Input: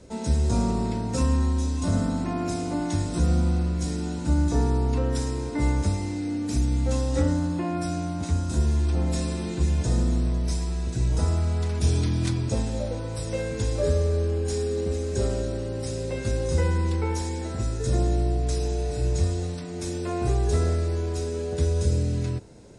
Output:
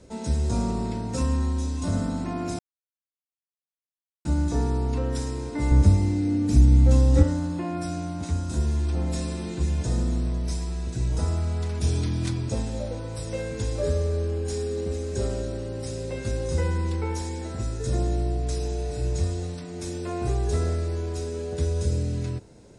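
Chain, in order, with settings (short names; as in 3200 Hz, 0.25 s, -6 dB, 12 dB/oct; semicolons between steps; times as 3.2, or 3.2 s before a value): 2.59–4.25 mute; 5.71–7.23 low shelf 330 Hz +11 dB; gain -2 dB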